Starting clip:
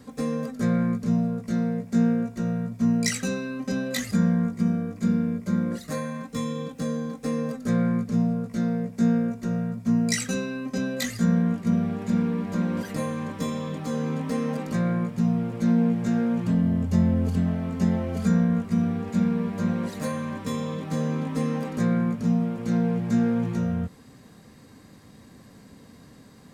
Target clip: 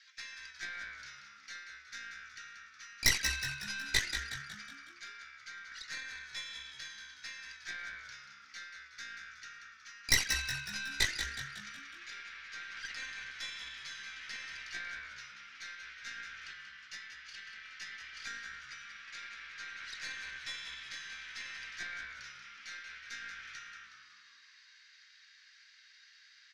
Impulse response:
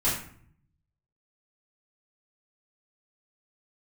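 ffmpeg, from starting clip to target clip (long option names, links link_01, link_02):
-filter_complex "[0:a]asuperpass=centerf=3100:order=12:qfactor=0.69,aeval=exprs='0.2*(cos(1*acos(clip(val(0)/0.2,-1,1)))-cos(1*PI/2))+0.0398*(cos(6*acos(clip(val(0)/0.2,-1,1)))-cos(6*PI/2))':channel_layout=same,asplit=7[link_01][link_02][link_03][link_04][link_05][link_06][link_07];[link_02]adelay=184,afreqshift=-70,volume=-8dB[link_08];[link_03]adelay=368,afreqshift=-140,volume=-13.7dB[link_09];[link_04]adelay=552,afreqshift=-210,volume=-19.4dB[link_10];[link_05]adelay=736,afreqshift=-280,volume=-25dB[link_11];[link_06]adelay=920,afreqshift=-350,volume=-30.7dB[link_12];[link_07]adelay=1104,afreqshift=-420,volume=-36.4dB[link_13];[link_01][link_08][link_09][link_10][link_11][link_12][link_13]amix=inputs=7:normalize=0,volume=1dB"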